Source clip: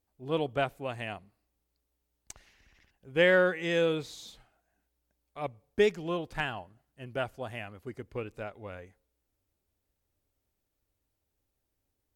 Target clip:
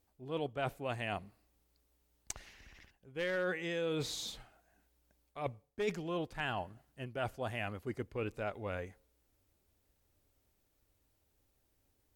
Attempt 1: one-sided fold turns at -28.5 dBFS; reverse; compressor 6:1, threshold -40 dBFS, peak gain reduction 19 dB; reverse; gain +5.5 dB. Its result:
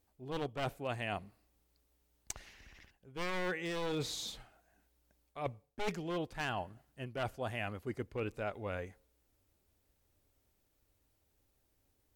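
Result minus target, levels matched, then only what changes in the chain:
one-sided fold: distortion +20 dB
change: one-sided fold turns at -18 dBFS

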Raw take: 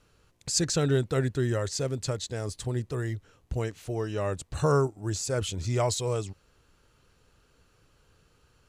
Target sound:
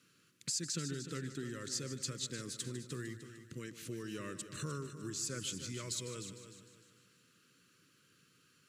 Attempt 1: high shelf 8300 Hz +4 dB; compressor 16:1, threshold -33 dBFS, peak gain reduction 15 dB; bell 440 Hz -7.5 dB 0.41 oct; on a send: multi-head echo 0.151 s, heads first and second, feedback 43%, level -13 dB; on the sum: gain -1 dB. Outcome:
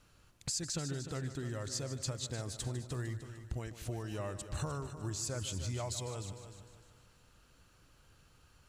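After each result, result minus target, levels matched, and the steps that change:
125 Hz band +4.5 dB; 1000 Hz band +3.5 dB
add after compressor: HPF 150 Hz 24 dB/oct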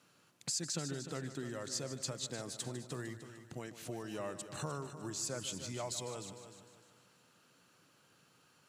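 1000 Hz band +5.0 dB
add first: Butterworth band-stop 760 Hz, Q 0.89

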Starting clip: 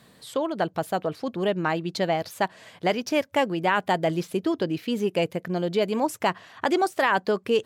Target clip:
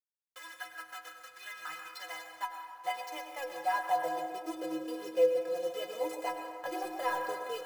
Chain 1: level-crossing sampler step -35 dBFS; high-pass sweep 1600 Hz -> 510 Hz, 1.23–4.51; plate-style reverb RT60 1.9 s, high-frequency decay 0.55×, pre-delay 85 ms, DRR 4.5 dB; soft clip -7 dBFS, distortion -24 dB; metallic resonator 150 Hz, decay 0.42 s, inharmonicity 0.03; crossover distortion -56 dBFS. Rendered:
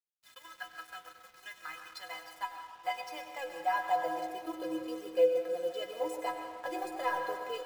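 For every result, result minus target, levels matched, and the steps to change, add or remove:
crossover distortion: distortion +11 dB; level-crossing sampler: distortion -7 dB
change: crossover distortion -67.5 dBFS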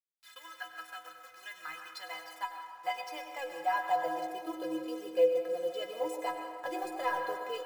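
level-crossing sampler: distortion -7 dB
change: level-crossing sampler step -27.5 dBFS

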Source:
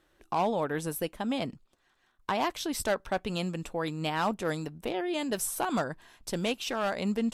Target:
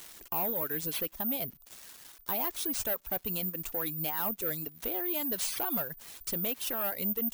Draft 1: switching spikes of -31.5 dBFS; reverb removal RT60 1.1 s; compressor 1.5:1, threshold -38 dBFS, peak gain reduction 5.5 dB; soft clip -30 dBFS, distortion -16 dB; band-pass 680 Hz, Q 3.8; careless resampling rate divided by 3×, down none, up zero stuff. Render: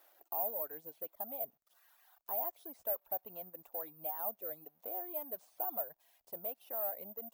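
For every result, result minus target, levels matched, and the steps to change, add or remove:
switching spikes: distortion +10 dB; 500 Hz band +3.0 dB
change: switching spikes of -42 dBFS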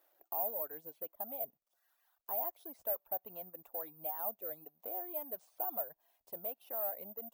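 500 Hz band +3.0 dB
remove: band-pass 680 Hz, Q 3.8

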